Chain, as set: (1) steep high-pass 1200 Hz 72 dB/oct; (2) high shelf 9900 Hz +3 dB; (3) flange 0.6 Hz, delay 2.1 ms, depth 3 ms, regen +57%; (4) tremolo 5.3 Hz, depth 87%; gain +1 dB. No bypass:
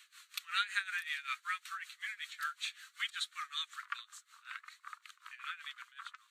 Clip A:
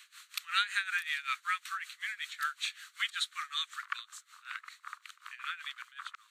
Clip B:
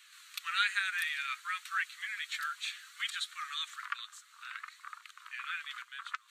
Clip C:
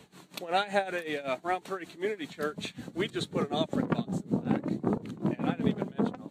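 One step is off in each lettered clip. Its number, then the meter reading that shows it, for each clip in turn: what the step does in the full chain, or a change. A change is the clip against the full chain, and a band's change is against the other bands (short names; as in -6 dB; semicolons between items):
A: 3, loudness change +4.0 LU; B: 4, crest factor change -2.5 dB; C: 1, 1 kHz band +9.0 dB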